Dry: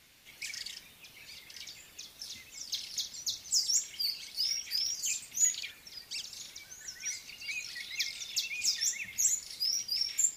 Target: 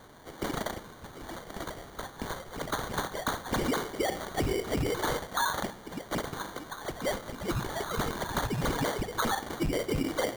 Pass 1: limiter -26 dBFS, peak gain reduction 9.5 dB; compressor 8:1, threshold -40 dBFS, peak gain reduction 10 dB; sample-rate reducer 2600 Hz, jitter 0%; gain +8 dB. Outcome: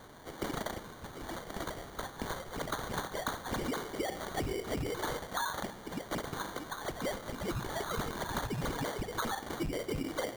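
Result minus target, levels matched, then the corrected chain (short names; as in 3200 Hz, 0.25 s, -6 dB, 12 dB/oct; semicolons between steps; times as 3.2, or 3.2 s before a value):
compressor: peak gain reduction +6.5 dB
limiter -26 dBFS, peak gain reduction 9.5 dB; compressor 8:1, threshold -32.5 dBFS, peak gain reduction 3.5 dB; sample-rate reducer 2600 Hz, jitter 0%; gain +8 dB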